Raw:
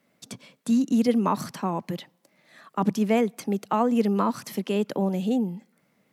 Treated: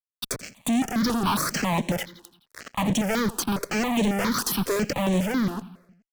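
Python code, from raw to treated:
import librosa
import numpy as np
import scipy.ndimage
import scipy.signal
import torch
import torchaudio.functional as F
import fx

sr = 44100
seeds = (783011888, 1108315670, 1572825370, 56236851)

y = scipy.signal.sosfilt(scipy.signal.bessel(8, 180.0, 'highpass', norm='mag', fs=sr, output='sos'), x)
y = fx.fuzz(y, sr, gain_db=46.0, gate_db=-46.0)
y = fx.echo_feedback(y, sr, ms=85, feedback_pct=59, wet_db=-19.0)
y = fx.phaser_held(y, sr, hz=7.3, low_hz=590.0, high_hz=4900.0)
y = y * librosa.db_to_amplitude(-6.5)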